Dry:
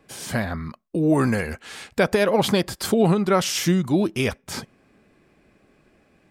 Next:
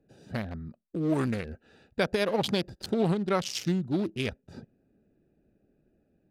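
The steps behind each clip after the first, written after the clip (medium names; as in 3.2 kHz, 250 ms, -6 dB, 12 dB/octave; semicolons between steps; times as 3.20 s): local Wiener filter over 41 samples; peaking EQ 4.2 kHz +7 dB 1.2 oct; trim -7.5 dB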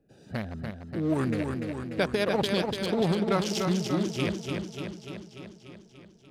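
modulated delay 293 ms, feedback 65%, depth 59 cents, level -5 dB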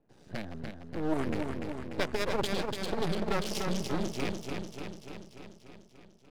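half-wave rectifier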